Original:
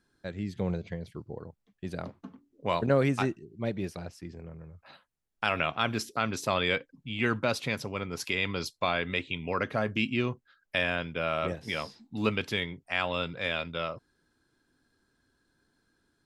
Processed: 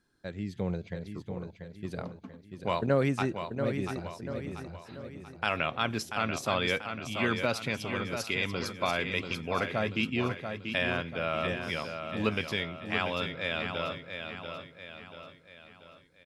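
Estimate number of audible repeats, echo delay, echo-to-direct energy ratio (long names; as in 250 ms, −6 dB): 5, 687 ms, −6.0 dB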